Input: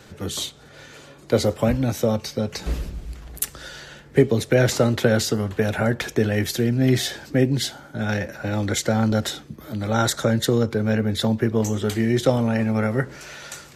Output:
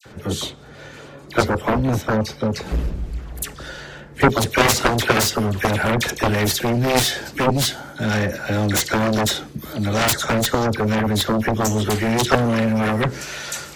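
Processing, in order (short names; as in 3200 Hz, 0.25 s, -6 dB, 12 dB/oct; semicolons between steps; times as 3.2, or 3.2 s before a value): high shelf 2700 Hz -8.5 dB, from 4.2 s +3.5 dB; dispersion lows, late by 55 ms, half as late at 1800 Hz; added harmonics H 7 -7 dB, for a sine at -3 dBFS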